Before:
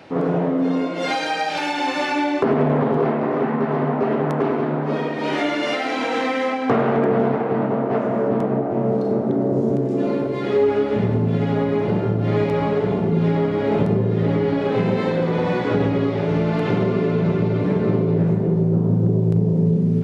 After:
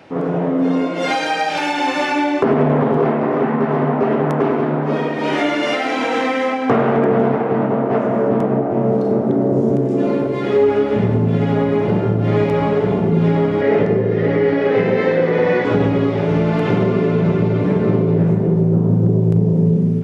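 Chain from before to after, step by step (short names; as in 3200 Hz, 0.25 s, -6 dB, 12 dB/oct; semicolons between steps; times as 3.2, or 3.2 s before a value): bell 4200 Hz -4 dB 0.36 oct; AGC gain up to 4 dB; 13.61–15.65 speaker cabinet 110–6200 Hz, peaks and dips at 140 Hz -7 dB, 210 Hz -4 dB, 470 Hz +6 dB, 970 Hz -4 dB, 1900 Hz +9 dB, 3600 Hz -3 dB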